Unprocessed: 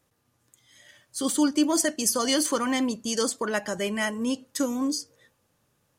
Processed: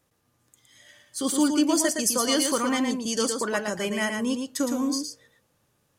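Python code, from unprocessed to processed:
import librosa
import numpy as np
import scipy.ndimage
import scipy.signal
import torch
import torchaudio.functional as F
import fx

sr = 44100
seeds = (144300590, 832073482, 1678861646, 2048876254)

y = x + 10.0 ** (-5.5 / 20.0) * np.pad(x, (int(114 * sr / 1000.0), 0))[:len(x)]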